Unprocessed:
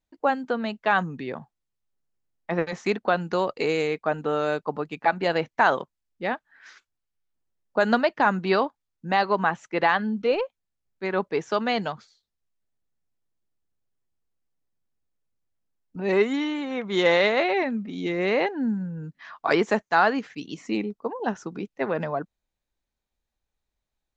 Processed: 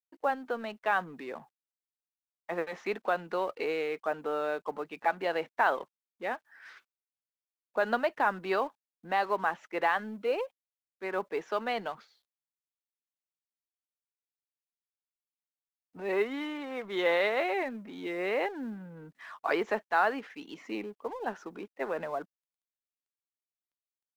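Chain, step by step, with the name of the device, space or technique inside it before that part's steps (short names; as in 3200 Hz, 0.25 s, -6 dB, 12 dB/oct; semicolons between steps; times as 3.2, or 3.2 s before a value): phone line with mismatched companding (BPF 350–3200 Hz; G.711 law mismatch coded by mu); gain -6.5 dB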